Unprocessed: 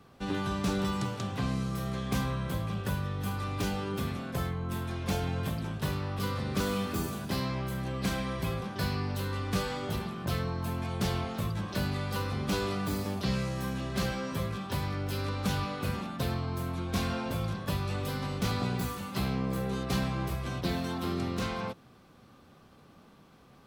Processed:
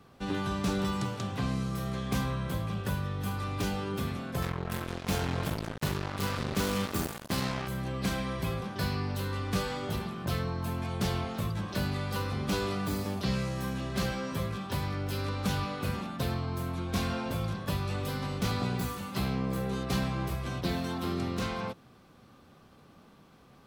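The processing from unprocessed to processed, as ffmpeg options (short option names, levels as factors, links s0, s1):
-filter_complex "[0:a]asettb=1/sr,asplit=3[s0][s1][s2];[s0]atrim=end=4.424[s3];[s1]atrim=start=4.42:end=7.68,asetpts=PTS-STARTPTS,afade=t=in:d=0.004:c=qsin,afade=t=out:st=3.256:d=0.004:c=qsin,acrusher=bits=4:mix=0:aa=0.5[s4];[s2]atrim=start=7.676[s5];[s3][s4]acrossfade=d=0.004:c1=hsin:c2=qsin[s6];[s6][s5]acrossfade=d=0.004:c1=qsin:c2=hsin"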